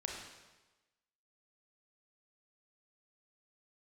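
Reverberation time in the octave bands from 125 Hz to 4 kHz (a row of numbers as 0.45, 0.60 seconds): 1.1, 1.1, 1.2, 1.2, 1.1, 1.1 seconds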